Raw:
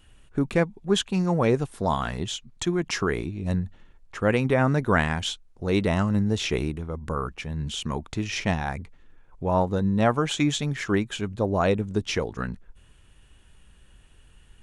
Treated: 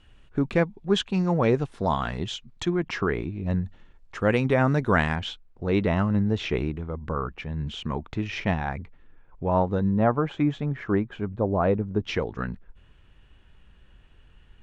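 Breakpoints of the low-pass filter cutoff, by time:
4,600 Hz
from 0:02.70 2,800 Hz
from 0:03.65 6,300 Hz
from 0:05.16 2,900 Hz
from 0:09.91 1,400 Hz
from 0:12.03 3,200 Hz

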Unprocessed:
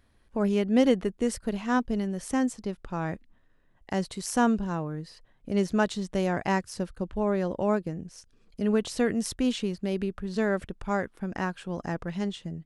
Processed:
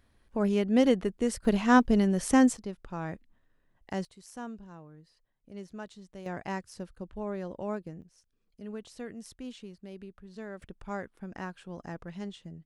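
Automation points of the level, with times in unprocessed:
−1.5 dB
from 0:01.45 +5 dB
from 0:02.57 −5 dB
from 0:04.05 −17.5 dB
from 0:06.26 −9 dB
from 0:08.02 −15.5 dB
from 0:10.62 −8.5 dB

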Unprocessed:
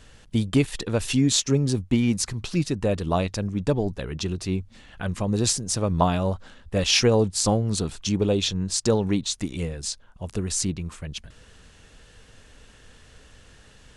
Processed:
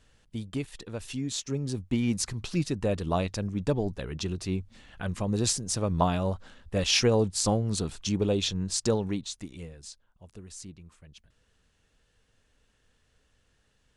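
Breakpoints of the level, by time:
0:01.29 −12.5 dB
0:02.18 −4 dB
0:08.86 −4 dB
0:09.39 −11 dB
0:10.35 −18 dB

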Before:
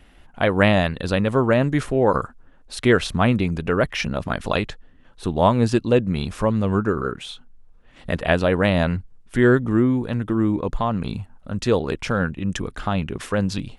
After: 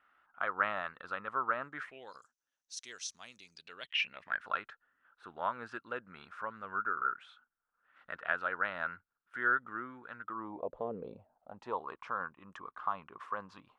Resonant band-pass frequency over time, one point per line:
resonant band-pass, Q 7
0:01.75 1,300 Hz
0:02.20 6,000 Hz
0:03.43 6,000 Hz
0:04.46 1,400 Hz
0:10.23 1,400 Hz
0:10.88 420 Hz
0:11.86 1,100 Hz

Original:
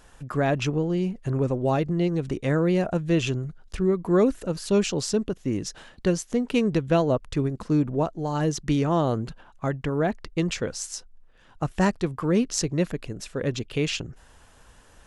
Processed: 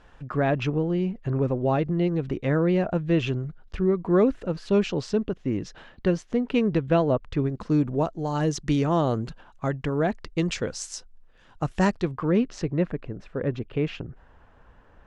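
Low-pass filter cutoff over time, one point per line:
0:07.36 3,200 Hz
0:07.89 7,700 Hz
0:11.86 7,700 Hz
0:12.19 3,300 Hz
0:13.01 1,700 Hz

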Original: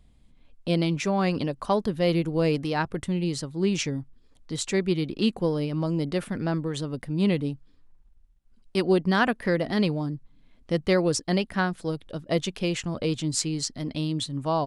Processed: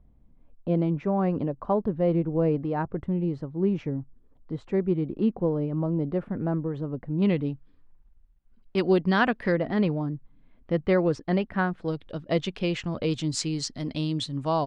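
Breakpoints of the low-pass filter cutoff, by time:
1,000 Hz
from 0:07.22 2,500 Hz
from 0:08.78 4,000 Hz
from 0:09.52 2,000 Hz
from 0:11.88 3,800 Hz
from 0:13.11 6,200 Hz

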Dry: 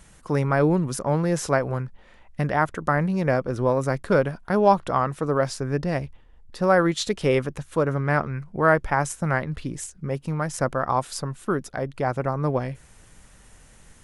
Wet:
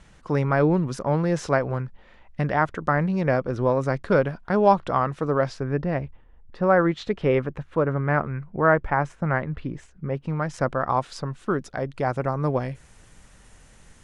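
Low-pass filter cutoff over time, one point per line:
0:05.35 5,000 Hz
0:05.80 2,300 Hz
0:10.05 2,300 Hz
0:10.53 4,400 Hz
0:11.20 4,400 Hz
0:12.16 8,800 Hz

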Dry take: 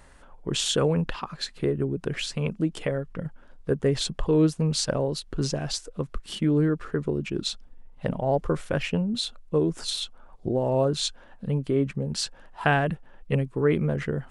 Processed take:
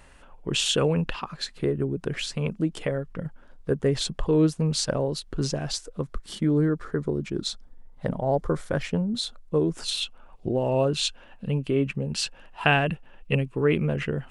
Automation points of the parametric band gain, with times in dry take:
parametric band 2,700 Hz 0.36 octaves
0:00.99 +8 dB
0:01.44 −0.5 dB
0:05.84 −0.5 dB
0:06.36 −9 dB
0:09.05 −9 dB
0:09.74 0 dB
0:10.01 +12 dB

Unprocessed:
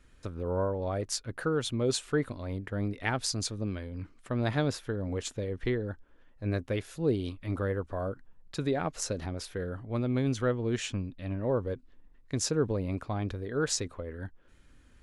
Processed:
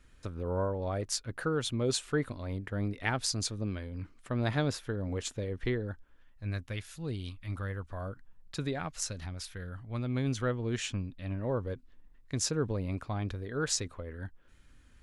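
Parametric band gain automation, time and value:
parametric band 420 Hz 2.1 octaves
0:05.78 −2.5 dB
0:06.48 −14 dB
0:07.62 −14 dB
0:08.61 −4 dB
0:08.96 −14 dB
0:09.73 −14 dB
0:10.25 −4.5 dB

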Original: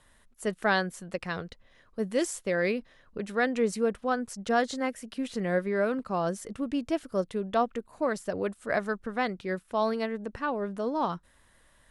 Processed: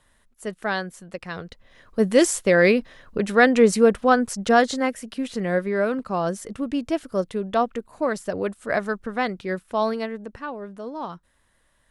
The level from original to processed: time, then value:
0:01.26 −0.5 dB
0:01.99 +11 dB
0:04.16 +11 dB
0:05.27 +4.5 dB
0:09.82 +4.5 dB
0:10.62 −3.5 dB

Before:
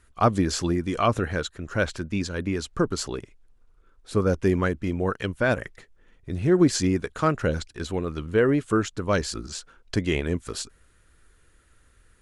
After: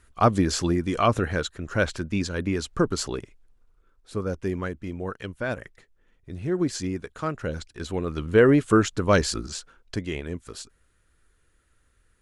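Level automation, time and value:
0:03.18 +1 dB
0:04.18 −6.5 dB
0:07.39 −6.5 dB
0:08.41 +4 dB
0:09.29 +4 dB
0:10.11 −6.5 dB

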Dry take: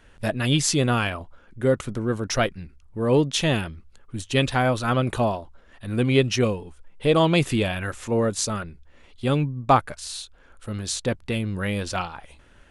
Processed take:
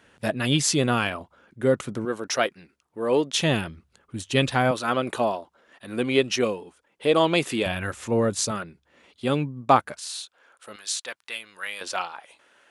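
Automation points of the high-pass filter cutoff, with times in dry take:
140 Hz
from 0:02.05 340 Hz
from 0:03.34 110 Hz
from 0:04.71 270 Hz
from 0:07.66 86 Hz
from 0:08.51 180 Hz
from 0:10.00 560 Hz
from 0:10.76 1,200 Hz
from 0:11.81 490 Hz

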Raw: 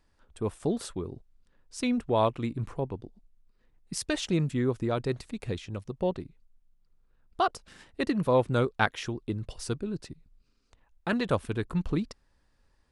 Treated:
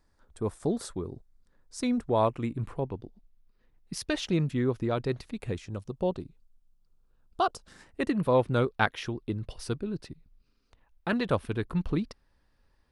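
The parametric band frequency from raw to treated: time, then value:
parametric band −8.5 dB 0.53 octaves
0:02.16 2,800 Hz
0:02.90 8,000 Hz
0:05.30 8,000 Hz
0:05.81 2,000 Hz
0:07.55 2,000 Hz
0:08.34 7,400 Hz

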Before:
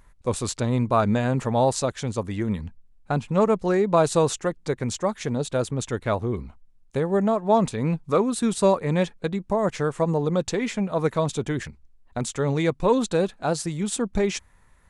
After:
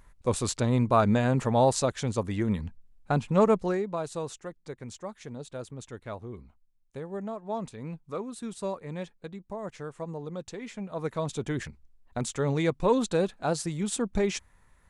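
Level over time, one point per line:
0:03.56 −1.5 dB
0:03.98 −14 dB
0:10.58 −14 dB
0:11.60 −3.5 dB

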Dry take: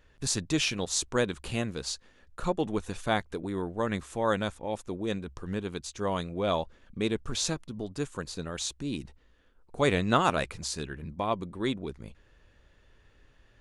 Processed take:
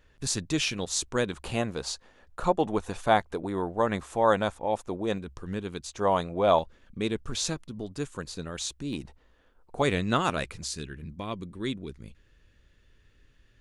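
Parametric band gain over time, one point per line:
parametric band 780 Hz 1.4 octaves
−1 dB
from 0:01.32 +8 dB
from 0:05.18 −1.5 dB
from 0:05.89 +9.5 dB
from 0:06.59 −1.5 dB
from 0:08.93 +6.5 dB
from 0:09.82 −3.5 dB
from 0:10.65 −10 dB

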